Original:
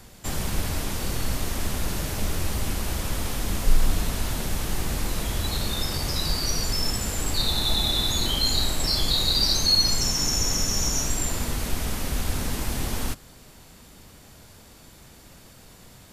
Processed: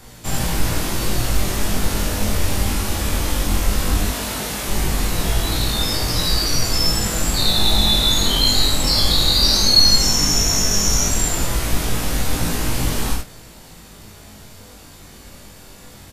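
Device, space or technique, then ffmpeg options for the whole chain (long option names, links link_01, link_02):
double-tracked vocal: -filter_complex "[0:a]asettb=1/sr,asplit=3[link_01][link_02][link_03];[link_01]atrim=end=4.044[link_04];[link_02]atrim=start=4.04:end=4.68,asetpts=PTS-STARTPTS,afade=type=in:duration=0.004:curve=qsin,afade=type=out:start_time=0.636:duration=0.004:curve=qsin,highpass=frequency=240:poles=1[link_05];[link_03]atrim=start=4.676[link_06];[link_04][link_05]acrossfade=duration=0.004:curve1=hsin:curve2=qsin[link_07];[link_07][link_06]acrossfade=duration=0.004:curve1=qsin:curve2=hsin,asplit=2[link_08][link_09];[link_09]adelay=34,volume=-12.5dB[link_10];[link_08][link_10]amix=inputs=2:normalize=0,aecho=1:1:24|76:0.596|0.708,flanger=delay=17.5:depth=3:speed=0.16,volume=7.5dB"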